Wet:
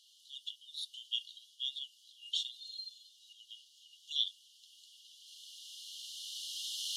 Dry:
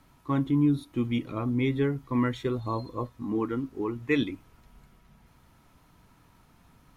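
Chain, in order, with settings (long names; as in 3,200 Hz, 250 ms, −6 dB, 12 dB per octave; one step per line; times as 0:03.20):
camcorder AGC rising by 10 dB per second
high-frequency loss of the air 73 metres
in parallel at −0.5 dB: brickwall limiter −22.5 dBFS, peak gain reduction 8.5 dB
on the sum: linear-phase brick-wall high-pass 2,800 Hz
level +6 dB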